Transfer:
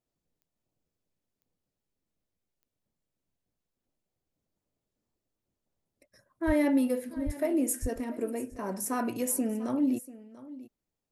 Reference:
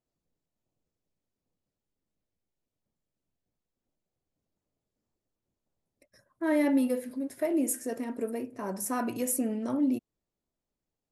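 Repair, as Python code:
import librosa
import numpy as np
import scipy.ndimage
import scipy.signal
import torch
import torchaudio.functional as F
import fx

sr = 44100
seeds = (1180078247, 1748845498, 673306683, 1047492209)

y = fx.fix_declick_ar(x, sr, threshold=10.0)
y = fx.fix_deplosive(y, sr, at_s=(6.46, 7.25, 7.81))
y = fx.fix_echo_inverse(y, sr, delay_ms=690, level_db=-17.5)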